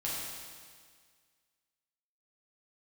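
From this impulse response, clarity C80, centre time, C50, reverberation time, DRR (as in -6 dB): 0.5 dB, 113 ms, -1.5 dB, 1.8 s, -7.0 dB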